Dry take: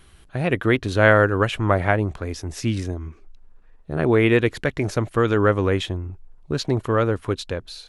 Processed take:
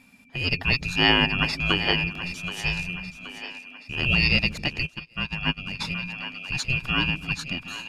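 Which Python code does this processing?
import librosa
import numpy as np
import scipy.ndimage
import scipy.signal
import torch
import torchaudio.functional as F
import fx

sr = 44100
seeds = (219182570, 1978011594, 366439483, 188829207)

p1 = fx.band_swap(x, sr, width_hz=1000)
p2 = p1 * np.sin(2.0 * np.pi * 1300.0 * np.arange(len(p1)) / sr)
p3 = fx.dynamic_eq(p2, sr, hz=4800.0, q=1.3, threshold_db=-40.0, ratio=4.0, max_db=7)
p4 = p3 + fx.echo_split(p3, sr, split_hz=400.0, low_ms=141, high_ms=775, feedback_pct=52, wet_db=-12.0, dry=0)
p5 = fx.upward_expand(p4, sr, threshold_db=-32.0, expansion=2.5, at=(4.85, 5.79), fade=0.02)
y = F.gain(torch.from_numpy(p5), -2.5).numpy()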